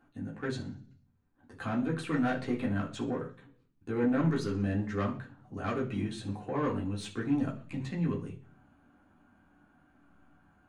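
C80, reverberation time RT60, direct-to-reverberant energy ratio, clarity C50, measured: 16.0 dB, 0.45 s, -4.0 dB, 11.0 dB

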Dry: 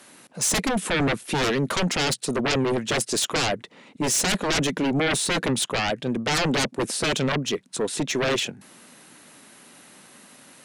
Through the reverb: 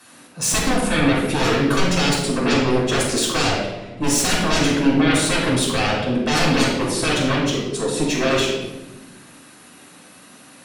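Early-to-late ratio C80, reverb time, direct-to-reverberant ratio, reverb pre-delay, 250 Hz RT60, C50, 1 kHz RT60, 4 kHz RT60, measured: 5.0 dB, 1.1 s, -5.0 dB, 3 ms, 1.8 s, 1.5 dB, 0.95 s, 0.80 s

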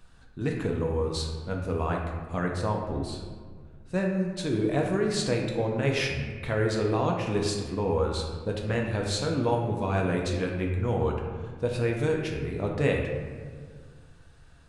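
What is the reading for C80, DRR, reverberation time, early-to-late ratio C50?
5.0 dB, 0.0 dB, 1.8 s, 3.0 dB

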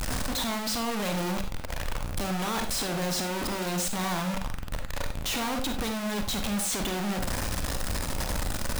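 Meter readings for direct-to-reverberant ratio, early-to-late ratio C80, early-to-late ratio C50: 5.0 dB, 13.0 dB, 7.5 dB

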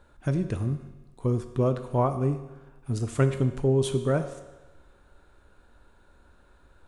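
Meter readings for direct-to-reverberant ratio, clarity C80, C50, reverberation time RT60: 7.5 dB, 12.0 dB, 10.0 dB, 1.1 s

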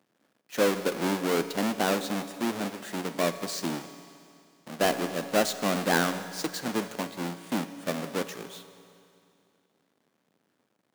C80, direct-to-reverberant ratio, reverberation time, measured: 12.0 dB, 10.0 dB, 2.5 s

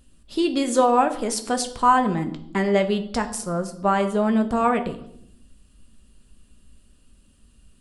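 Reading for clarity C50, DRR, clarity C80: 13.5 dB, 6.0 dB, 16.0 dB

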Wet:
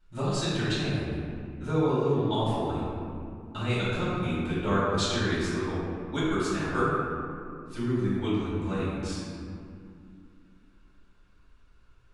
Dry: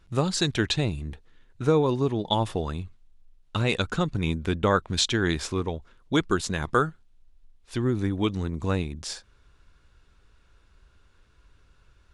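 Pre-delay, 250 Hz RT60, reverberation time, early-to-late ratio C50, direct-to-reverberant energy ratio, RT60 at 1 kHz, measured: 3 ms, 3.5 s, 2.4 s, -3.0 dB, -11.5 dB, 2.3 s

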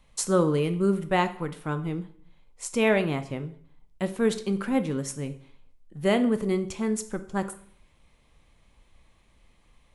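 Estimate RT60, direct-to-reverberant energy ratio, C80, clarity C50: 0.55 s, 8.5 dB, 17.5 dB, 14.0 dB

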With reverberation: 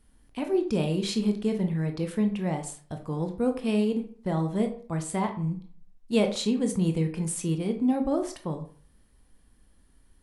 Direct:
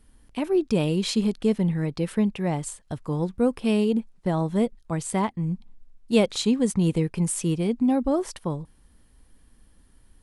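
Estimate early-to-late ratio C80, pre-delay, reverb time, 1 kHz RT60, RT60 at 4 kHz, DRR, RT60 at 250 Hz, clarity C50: 15.0 dB, 18 ms, 0.45 s, 0.45 s, 0.30 s, 5.0 dB, 0.45 s, 11.0 dB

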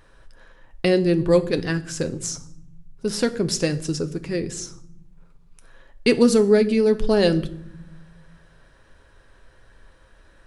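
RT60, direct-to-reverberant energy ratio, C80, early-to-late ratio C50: 0.65 s, 8.0 dB, 20.0 dB, 16.5 dB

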